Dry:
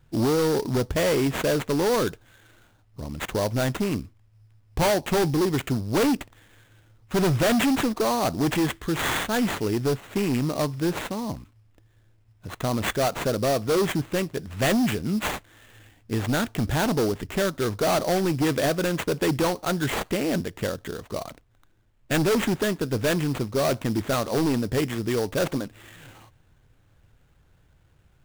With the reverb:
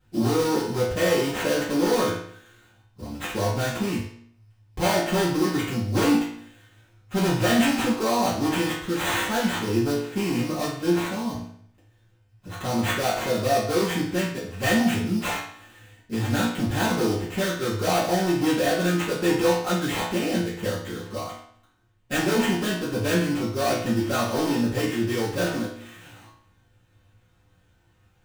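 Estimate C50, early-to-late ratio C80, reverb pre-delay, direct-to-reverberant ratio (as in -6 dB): 3.0 dB, 7.0 dB, 3 ms, -11.5 dB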